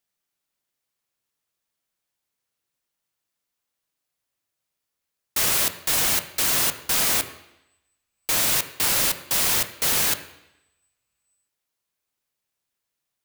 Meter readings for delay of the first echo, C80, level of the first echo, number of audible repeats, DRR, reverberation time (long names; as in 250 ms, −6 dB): no echo audible, 14.0 dB, no echo audible, no echo audible, 8.5 dB, 0.85 s